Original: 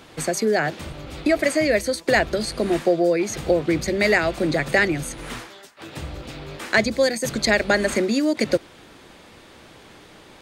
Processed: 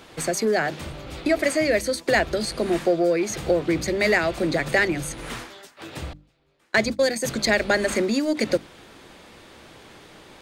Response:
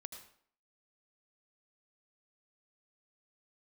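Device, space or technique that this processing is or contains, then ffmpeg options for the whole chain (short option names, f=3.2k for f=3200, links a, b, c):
parallel distortion: -filter_complex "[0:a]asplit=2[a][b];[b]asoftclip=type=hard:threshold=-24.5dB,volume=-9.5dB[c];[a][c]amix=inputs=2:normalize=0,asettb=1/sr,asplit=3[d][e][f];[d]atrim=end=6.134[g];[e]atrim=start=6.13:end=7.16,asetpts=PTS-STARTPTS,afade=t=in:d=0.004:c=qsin,afade=t=out:st=1.026:d=0.004:c=qsin,agate=range=-30dB:threshold=-22dB:ratio=16:detection=peak[h];[f]atrim=start=7.156[i];[g][h]acrossfade=d=0.004:c1=hsin:c2=qsin[j];[j][i]acrossfade=d=0.004:c1=qsin:c2=hsin,bandreject=f=50:t=h:w=6,bandreject=f=100:t=h:w=6,bandreject=f=150:t=h:w=6,bandreject=f=200:t=h:w=6,bandreject=f=250:t=h:w=6,bandreject=f=300:t=h:w=6,volume=-2.5dB"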